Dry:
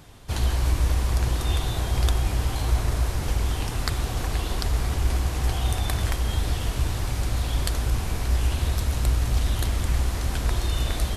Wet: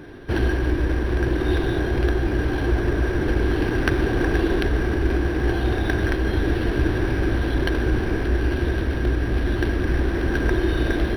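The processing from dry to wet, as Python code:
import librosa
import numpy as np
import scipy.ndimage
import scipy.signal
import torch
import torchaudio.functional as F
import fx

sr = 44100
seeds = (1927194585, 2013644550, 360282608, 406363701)

y = fx.rider(x, sr, range_db=3, speed_s=0.5)
y = fx.small_body(y, sr, hz=(340.0, 1600.0), ring_ms=25, db=18)
y = np.interp(np.arange(len(y)), np.arange(len(y))[::6], y[::6])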